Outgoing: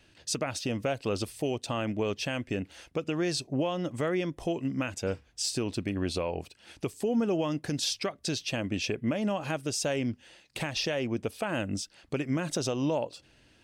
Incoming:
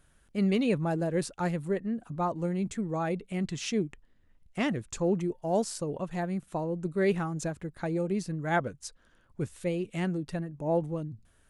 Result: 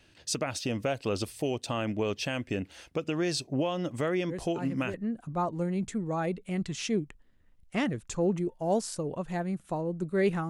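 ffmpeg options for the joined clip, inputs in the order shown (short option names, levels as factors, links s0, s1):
-filter_complex "[1:a]asplit=2[s0][s1];[0:a]apad=whole_dur=10.49,atrim=end=10.49,atrim=end=4.942[s2];[s1]atrim=start=1.768:end=7.32[s3];[s0]atrim=start=1.12:end=1.77,asetpts=PTS-STARTPTS,volume=0.355,afade=t=in:d=0.004:c=hsin,afade=t=out:st=0.646:d=0.004:c=hsin,adelay=189189S[s4];[s2][s3]acrossfade=d=0.004:c1=hsin:c2=hsin[s5];[s5][s4]amix=inputs=2:normalize=0"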